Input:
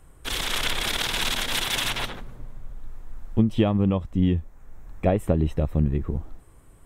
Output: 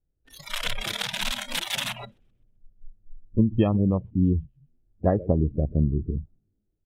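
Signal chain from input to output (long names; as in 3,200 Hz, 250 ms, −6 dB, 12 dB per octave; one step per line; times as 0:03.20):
adaptive Wiener filter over 41 samples
echo with shifted repeats 128 ms, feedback 42%, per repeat −110 Hz, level −16 dB
noise reduction from a noise print of the clip's start 26 dB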